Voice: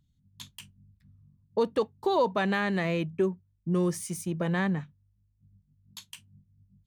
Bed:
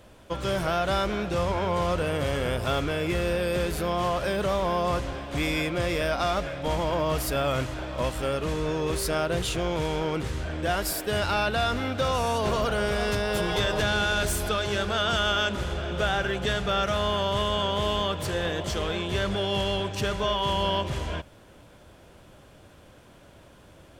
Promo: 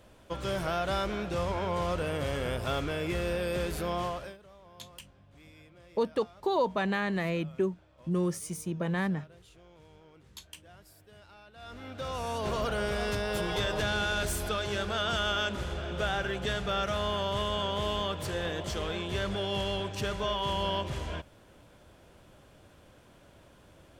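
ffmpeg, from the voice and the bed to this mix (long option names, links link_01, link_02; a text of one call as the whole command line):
ffmpeg -i stem1.wav -i stem2.wav -filter_complex "[0:a]adelay=4400,volume=-2.5dB[link_01];[1:a]volume=19dB,afade=type=out:start_time=3.97:duration=0.41:silence=0.0630957,afade=type=in:start_time=11.54:duration=1.11:silence=0.0630957[link_02];[link_01][link_02]amix=inputs=2:normalize=0" out.wav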